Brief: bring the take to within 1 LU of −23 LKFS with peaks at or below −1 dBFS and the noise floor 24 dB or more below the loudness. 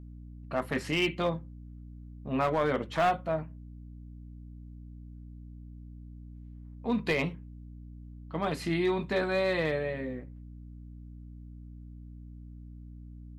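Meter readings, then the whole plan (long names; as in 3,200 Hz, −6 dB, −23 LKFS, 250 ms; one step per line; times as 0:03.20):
share of clipped samples 0.3%; peaks flattened at −20.5 dBFS; mains hum 60 Hz; hum harmonics up to 300 Hz; level of the hum −43 dBFS; integrated loudness −30.5 LKFS; sample peak −20.5 dBFS; target loudness −23.0 LKFS
→ clipped peaks rebuilt −20.5 dBFS
mains-hum notches 60/120/180/240/300 Hz
level +7.5 dB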